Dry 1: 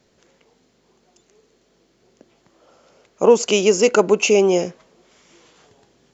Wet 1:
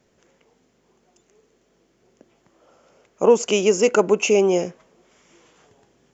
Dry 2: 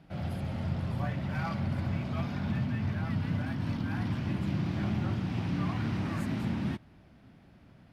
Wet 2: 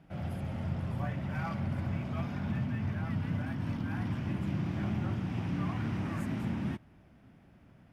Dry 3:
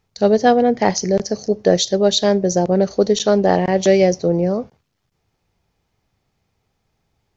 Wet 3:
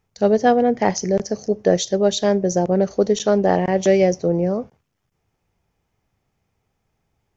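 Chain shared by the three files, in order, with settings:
peaking EQ 4.2 kHz -7.5 dB 0.55 oct; trim -2 dB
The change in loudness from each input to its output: -2.0 LU, -2.0 LU, -2.0 LU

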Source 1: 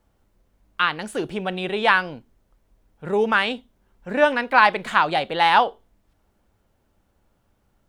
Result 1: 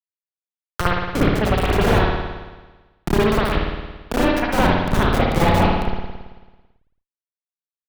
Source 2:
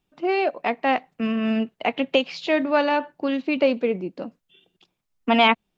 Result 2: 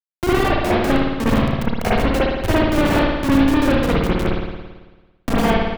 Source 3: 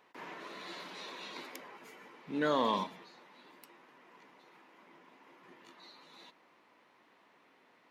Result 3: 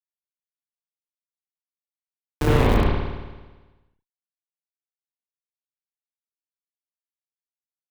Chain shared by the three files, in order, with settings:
high-pass 150 Hz 12 dB/octave; compression 16:1, threshold -27 dBFS; on a send: delay 419 ms -10 dB; on the sum: Schmitt trigger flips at -26.5 dBFS; doubling 33 ms -12 dB; spring tank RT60 1 s, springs 55 ms, chirp 25 ms, DRR -9 dB; three bands compressed up and down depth 40%; peak normalisation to -3 dBFS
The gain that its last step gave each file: +13.0 dB, +10.0 dB, +19.5 dB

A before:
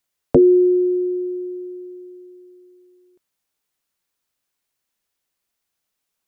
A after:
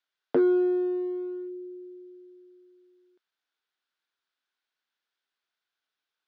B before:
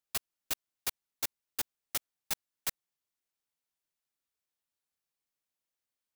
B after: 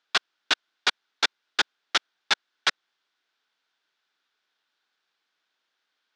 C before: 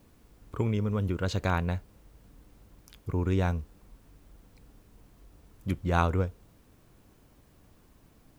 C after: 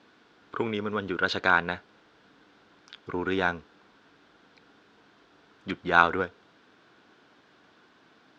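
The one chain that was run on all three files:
in parallel at -10.5 dB: one-sided clip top -26 dBFS, bottom -11 dBFS; on the sum: cabinet simulation 340–5000 Hz, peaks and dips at 550 Hz -5 dB, 1.5 kHz +9 dB, 3.5 kHz +5 dB; normalise loudness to -27 LUFS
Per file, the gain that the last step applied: -8.0 dB, +13.0 dB, +4.0 dB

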